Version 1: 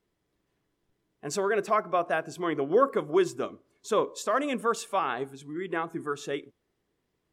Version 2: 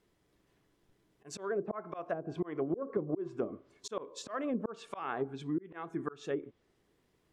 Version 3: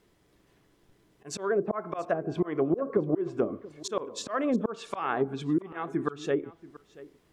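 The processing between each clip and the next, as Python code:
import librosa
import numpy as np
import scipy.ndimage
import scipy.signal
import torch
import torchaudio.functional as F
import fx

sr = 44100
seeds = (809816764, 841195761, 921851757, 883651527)

y1 = fx.auto_swell(x, sr, attack_ms=506.0)
y1 = fx.env_lowpass_down(y1, sr, base_hz=390.0, full_db=-32.0)
y1 = y1 * 10.0 ** (4.5 / 20.0)
y2 = y1 + 10.0 ** (-19.5 / 20.0) * np.pad(y1, (int(682 * sr / 1000.0), 0))[:len(y1)]
y2 = y2 * 10.0 ** (7.5 / 20.0)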